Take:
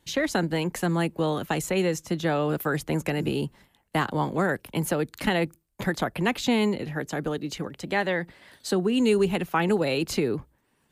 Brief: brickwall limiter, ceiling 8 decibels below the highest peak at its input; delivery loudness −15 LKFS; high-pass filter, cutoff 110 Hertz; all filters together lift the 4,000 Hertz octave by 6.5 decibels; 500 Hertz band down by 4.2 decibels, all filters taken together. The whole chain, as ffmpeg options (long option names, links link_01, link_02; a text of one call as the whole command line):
ffmpeg -i in.wav -af "highpass=110,equalizer=frequency=500:width_type=o:gain=-5.5,equalizer=frequency=4000:width_type=o:gain=8.5,volume=13.5dB,alimiter=limit=-3.5dB:level=0:latency=1" out.wav